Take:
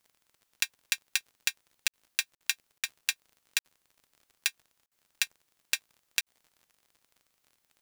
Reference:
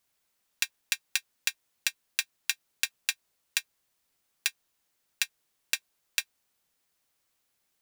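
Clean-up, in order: de-click; interpolate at 1.88/2.35/2.78/3.59/4.86/6.21, 57 ms

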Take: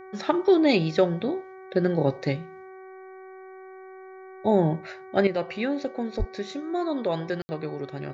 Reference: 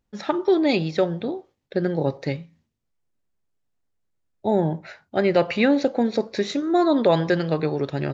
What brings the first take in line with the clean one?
de-hum 378.1 Hz, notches 6; de-plosive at 6.18; room tone fill 7.42–7.49; gain correction +9 dB, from 5.27

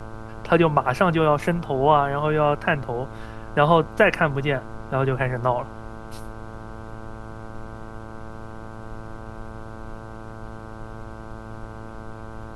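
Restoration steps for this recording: de-hum 110.9 Hz, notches 14; noise print and reduce 30 dB

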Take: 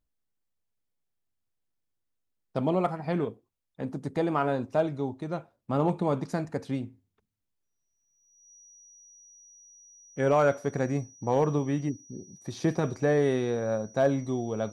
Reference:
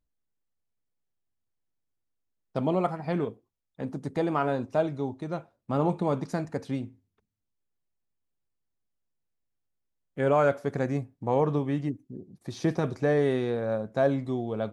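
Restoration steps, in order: clip repair -14.5 dBFS; notch 5800 Hz, Q 30

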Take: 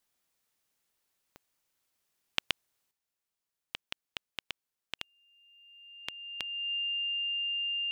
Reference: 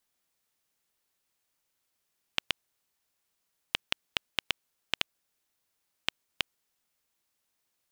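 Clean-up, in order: de-click; notch 2800 Hz, Q 30; gain correction +9.5 dB, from 2.91

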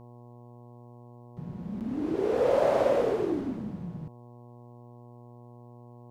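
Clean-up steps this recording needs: de-hum 120.6 Hz, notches 9; interpolate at 1.8, 8.1 ms

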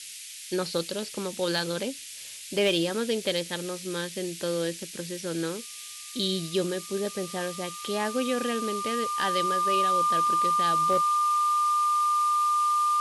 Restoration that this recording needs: clip repair -17 dBFS; notch 1200 Hz, Q 30; noise print and reduce 30 dB

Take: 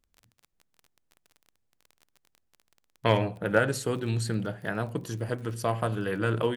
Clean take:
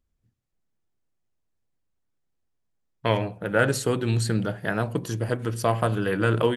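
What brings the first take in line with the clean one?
clip repair -10 dBFS; de-click; gain 0 dB, from 3.59 s +5 dB

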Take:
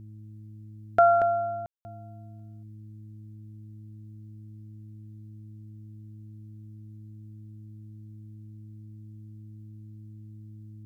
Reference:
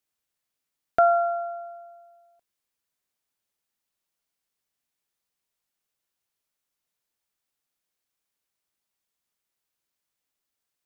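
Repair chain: de-hum 106.8 Hz, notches 3; room tone fill 1.66–1.85; inverse comb 0.233 s -7 dB

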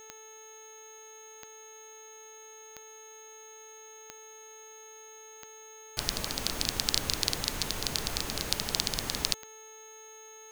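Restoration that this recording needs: de-click; de-hum 437.8 Hz, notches 9; notch 6500 Hz, Q 30; expander -42 dBFS, range -21 dB

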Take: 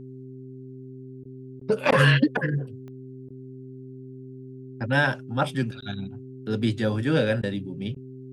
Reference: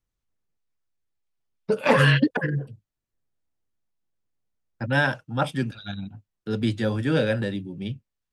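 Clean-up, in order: de-click; de-hum 130 Hz, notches 3; interpolate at 1.24/1.6/1.91/3.29/5.81/7.42/7.95, 11 ms

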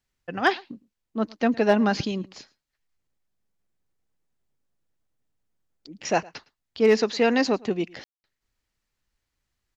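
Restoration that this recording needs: clip repair -9 dBFS; room tone fill 8.04–8.24; inverse comb 0.11 s -24 dB

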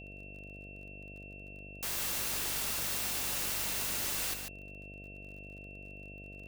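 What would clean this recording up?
de-click; de-hum 49.2 Hz, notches 14; notch 2700 Hz, Q 30; inverse comb 0.144 s -6.5 dB

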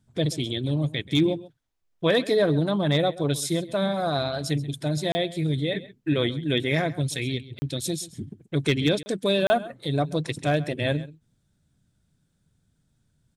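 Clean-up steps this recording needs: clip repair -12 dBFS; interpolate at 5.12/7.59/9.03/9.47, 30 ms; inverse comb 0.132 s -18 dB

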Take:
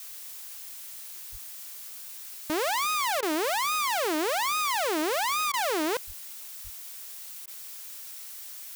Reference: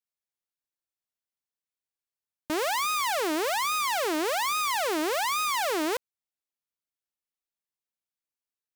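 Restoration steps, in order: notch 5600 Hz, Q 30; de-plosive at 1.31/6.06/6.63; interpolate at 3.21/5.52/7.46, 15 ms; denoiser 30 dB, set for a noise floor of -42 dBFS

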